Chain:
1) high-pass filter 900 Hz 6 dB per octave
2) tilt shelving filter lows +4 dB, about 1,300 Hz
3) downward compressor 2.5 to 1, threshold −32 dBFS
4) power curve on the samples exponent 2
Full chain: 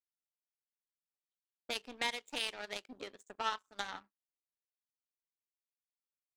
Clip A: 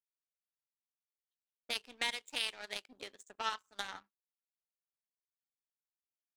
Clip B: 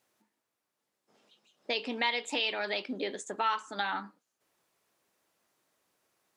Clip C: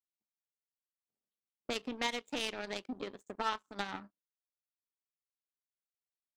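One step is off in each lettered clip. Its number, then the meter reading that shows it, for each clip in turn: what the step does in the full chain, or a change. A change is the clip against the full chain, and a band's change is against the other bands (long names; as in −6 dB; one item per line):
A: 2, 250 Hz band −5.5 dB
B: 4, change in crest factor −8.0 dB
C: 1, 250 Hz band +9.0 dB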